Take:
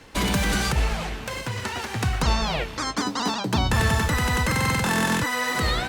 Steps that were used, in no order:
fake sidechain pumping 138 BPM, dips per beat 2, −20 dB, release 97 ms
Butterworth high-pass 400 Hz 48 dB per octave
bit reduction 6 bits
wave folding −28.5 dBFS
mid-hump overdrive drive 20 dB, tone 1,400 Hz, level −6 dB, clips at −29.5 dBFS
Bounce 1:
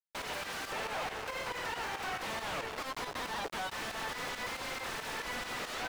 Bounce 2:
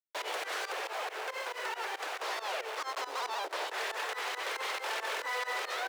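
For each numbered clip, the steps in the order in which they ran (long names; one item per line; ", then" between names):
Butterworth high-pass, then bit reduction, then wave folding, then fake sidechain pumping, then mid-hump overdrive
bit reduction, then mid-hump overdrive, then fake sidechain pumping, then wave folding, then Butterworth high-pass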